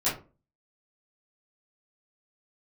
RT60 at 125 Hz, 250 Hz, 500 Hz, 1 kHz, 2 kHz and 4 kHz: 0.45, 0.40, 0.35, 0.30, 0.25, 0.20 s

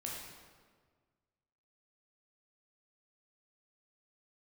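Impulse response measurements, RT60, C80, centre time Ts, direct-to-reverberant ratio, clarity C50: 1.6 s, 2.5 dB, 80 ms, -3.5 dB, 0.0 dB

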